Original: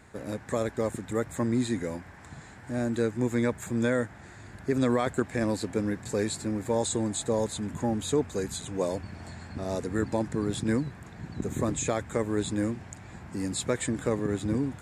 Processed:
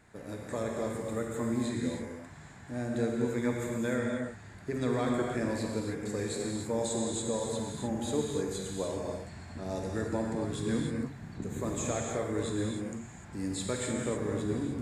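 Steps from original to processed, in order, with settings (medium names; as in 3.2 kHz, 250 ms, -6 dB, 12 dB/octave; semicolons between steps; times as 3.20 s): gated-style reverb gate 330 ms flat, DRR -1 dB; trim -7 dB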